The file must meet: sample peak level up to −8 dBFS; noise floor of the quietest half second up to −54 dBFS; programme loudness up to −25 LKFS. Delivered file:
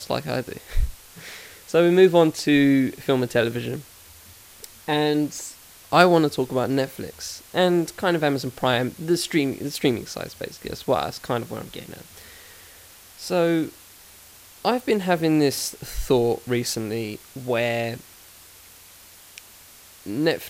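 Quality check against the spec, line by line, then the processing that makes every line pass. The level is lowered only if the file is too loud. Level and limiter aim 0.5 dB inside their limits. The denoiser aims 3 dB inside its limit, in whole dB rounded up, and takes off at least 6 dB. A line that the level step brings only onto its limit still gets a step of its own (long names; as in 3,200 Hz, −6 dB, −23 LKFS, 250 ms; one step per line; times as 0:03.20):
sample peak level −2.0 dBFS: out of spec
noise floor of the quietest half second −48 dBFS: out of spec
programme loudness −22.5 LKFS: out of spec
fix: broadband denoise 6 dB, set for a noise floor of −48 dBFS
level −3 dB
brickwall limiter −8.5 dBFS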